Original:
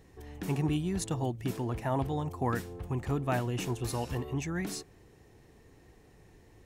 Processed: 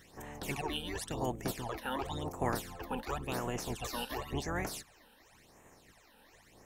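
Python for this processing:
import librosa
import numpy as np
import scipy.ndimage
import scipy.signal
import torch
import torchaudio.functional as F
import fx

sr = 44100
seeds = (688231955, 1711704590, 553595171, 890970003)

y = fx.spec_clip(x, sr, under_db=22)
y = fx.rider(y, sr, range_db=4, speed_s=0.5)
y = fx.phaser_stages(y, sr, stages=12, low_hz=110.0, high_hz=4600.0, hz=0.93, feedback_pct=30)
y = F.gain(torch.from_numpy(y), -2.5).numpy()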